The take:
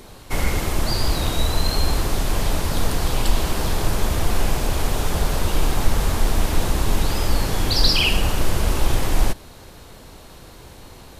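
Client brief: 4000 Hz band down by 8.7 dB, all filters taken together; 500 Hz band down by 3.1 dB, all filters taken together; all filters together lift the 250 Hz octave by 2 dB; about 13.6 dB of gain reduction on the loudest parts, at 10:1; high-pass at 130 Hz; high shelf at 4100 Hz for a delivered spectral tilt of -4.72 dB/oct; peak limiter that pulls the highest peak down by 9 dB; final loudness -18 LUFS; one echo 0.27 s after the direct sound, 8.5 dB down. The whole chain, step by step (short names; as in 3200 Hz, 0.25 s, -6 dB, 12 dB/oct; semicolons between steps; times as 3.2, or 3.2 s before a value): HPF 130 Hz; bell 250 Hz +5 dB; bell 500 Hz -5.5 dB; bell 4000 Hz -9 dB; high shelf 4100 Hz -4 dB; compressor 10:1, threshold -37 dBFS; limiter -34 dBFS; echo 0.27 s -8.5 dB; gain +25 dB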